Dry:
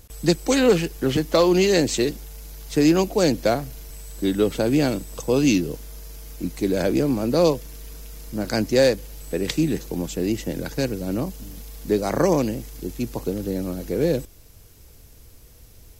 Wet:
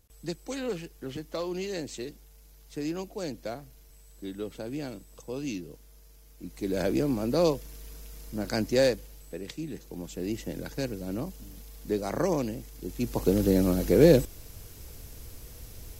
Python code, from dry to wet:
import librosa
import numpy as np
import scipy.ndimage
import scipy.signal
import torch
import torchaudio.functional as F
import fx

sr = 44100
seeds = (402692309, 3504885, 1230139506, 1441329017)

y = fx.gain(x, sr, db=fx.line((6.35, -16.0), (6.79, -6.0), (8.86, -6.0), (9.57, -16.0), (10.37, -8.0), (12.79, -8.0), (13.36, 3.5)))